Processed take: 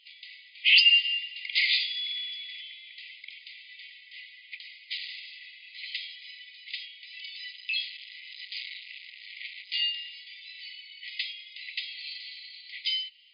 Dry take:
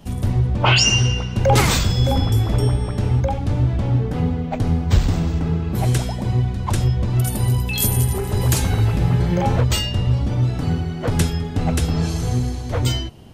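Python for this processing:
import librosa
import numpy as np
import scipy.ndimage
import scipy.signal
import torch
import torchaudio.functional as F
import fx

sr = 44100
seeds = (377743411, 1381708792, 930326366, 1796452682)

y = fx.overload_stage(x, sr, gain_db=22.5, at=(7.52, 9.82))
y = fx.brickwall_bandpass(y, sr, low_hz=1900.0, high_hz=5000.0)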